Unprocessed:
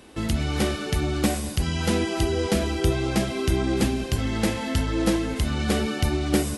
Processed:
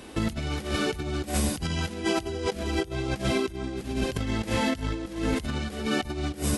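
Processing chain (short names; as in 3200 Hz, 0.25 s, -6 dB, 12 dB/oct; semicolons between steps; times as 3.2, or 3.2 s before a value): negative-ratio compressor -28 dBFS, ratio -0.5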